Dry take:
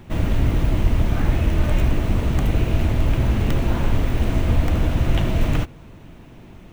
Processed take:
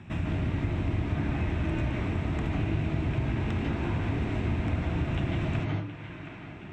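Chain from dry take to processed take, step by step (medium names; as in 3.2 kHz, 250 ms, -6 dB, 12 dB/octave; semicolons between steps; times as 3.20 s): high-pass 74 Hz; band-passed feedback delay 720 ms, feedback 64%, band-pass 1.8 kHz, level -15.5 dB; reverberation RT60 0.40 s, pre-delay 141 ms, DRR 0.5 dB; compression 2:1, threshold -31 dBFS, peak gain reduction 9 dB; distance through air 130 m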